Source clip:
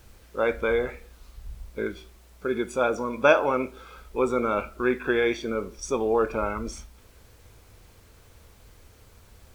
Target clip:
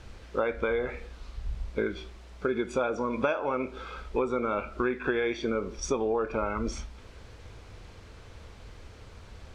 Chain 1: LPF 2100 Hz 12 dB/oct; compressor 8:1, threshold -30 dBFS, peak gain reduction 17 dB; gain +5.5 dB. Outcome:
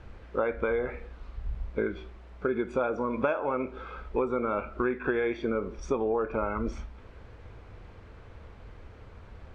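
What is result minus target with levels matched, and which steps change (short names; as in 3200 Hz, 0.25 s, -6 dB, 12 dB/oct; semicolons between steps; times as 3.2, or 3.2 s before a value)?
4000 Hz band -9.0 dB
change: LPF 4900 Hz 12 dB/oct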